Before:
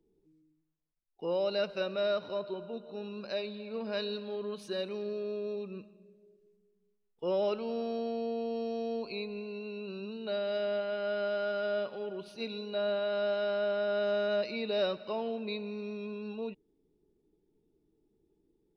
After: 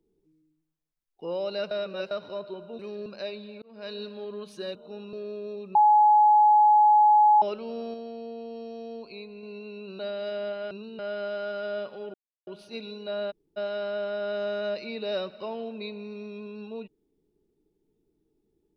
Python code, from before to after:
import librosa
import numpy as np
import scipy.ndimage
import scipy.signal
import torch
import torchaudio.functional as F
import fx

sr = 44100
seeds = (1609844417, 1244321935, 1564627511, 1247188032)

y = fx.edit(x, sr, fx.reverse_span(start_s=1.71, length_s=0.4),
    fx.swap(start_s=2.79, length_s=0.38, other_s=4.86, other_length_s=0.27),
    fx.fade_in_span(start_s=3.73, length_s=0.39),
    fx.bleep(start_s=5.75, length_s=1.67, hz=844.0, db=-14.5),
    fx.clip_gain(start_s=7.94, length_s=1.49, db=-4.0),
    fx.move(start_s=9.99, length_s=0.28, to_s=10.99),
    fx.insert_silence(at_s=12.14, length_s=0.33),
    fx.room_tone_fill(start_s=12.98, length_s=0.26, crossfade_s=0.02), tone=tone)